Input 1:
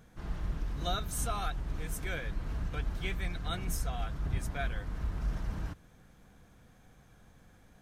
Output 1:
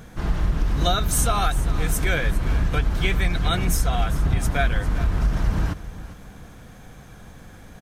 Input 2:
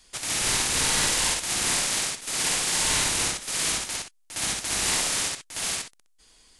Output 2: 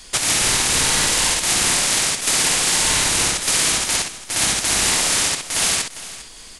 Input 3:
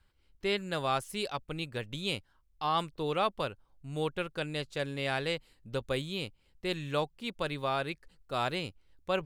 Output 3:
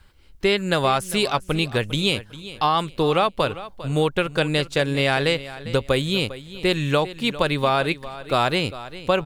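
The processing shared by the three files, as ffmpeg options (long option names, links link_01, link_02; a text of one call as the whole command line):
ffmpeg -i in.wav -filter_complex "[0:a]acompressor=threshold=-31dB:ratio=6,asplit=2[link_01][link_02];[link_02]aecho=0:1:401|802|1203:0.168|0.042|0.0105[link_03];[link_01][link_03]amix=inputs=2:normalize=0,alimiter=level_in=16.5dB:limit=-1dB:release=50:level=0:latency=1,volume=-1dB" out.wav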